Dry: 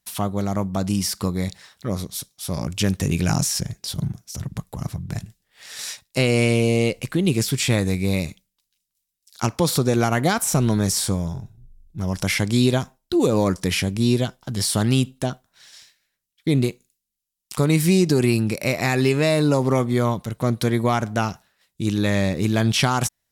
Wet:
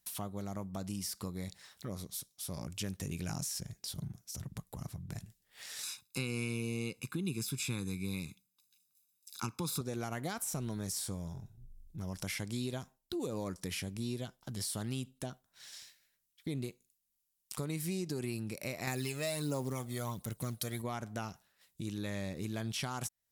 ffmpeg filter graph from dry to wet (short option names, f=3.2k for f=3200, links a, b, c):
-filter_complex "[0:a]asettb=1/sr,asplit=3[a][b][c];[a]atrim=end=5.834[d];[b]atrim=start=5.83:end=9.81,asetpts=PTS-STARTPTS,afade=t=in:d=0.004:c=qsin,afade=t=out:st=3.976:d=0.004:c=qsin,highpass=110,aecho=1:1:0.8:0.95,atrim=end_sample=175518[e];[c]atrim=start=9.806[f];[d][e]acrossfade=d=0.004:c1=hsin:c2=qsin[g];[g][f]acrossfade=d=0.004:c1=qsin:c2=hsin,asettb=1/sr,asplit=3[h][i][j];[h]atrim=end=18.874[k];[i]atrim=start=18.87:end=20.82,asetpts=PTS-STARTPTS,afade=t=in:d=0.004:c=qsin,afade=t=out:st=1.946:d=0.004:c=qsin,highshelf=f=4.6k:g=11,aphaser=in_gain=1:out_gain=1:delay=1.6:decay=0.48:speed=1.4:type=sinusoidal,acrusher=bits=7:mode=log:mix=0:aa=0.000001[l];[j]atrim=start=20.816[m];[k][l]acrossfade=d=0.004:c1=hsin:c2=qsin[n];[n][m]acrossfade=d=0.004:c1=qsin:c2=hsin,highshelf=f=7.8k:g=7.5,acompressor=threshold=-44dB:ratio=2,volume=-4dB"